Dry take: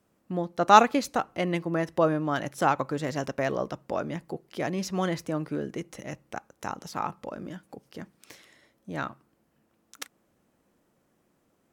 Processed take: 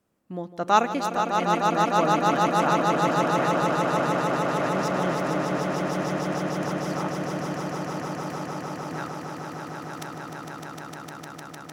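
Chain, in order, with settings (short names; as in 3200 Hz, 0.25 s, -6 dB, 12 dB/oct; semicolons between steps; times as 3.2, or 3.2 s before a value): swelling echo 0.152 s, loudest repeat 8, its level -5 dB; gain -3.5 dB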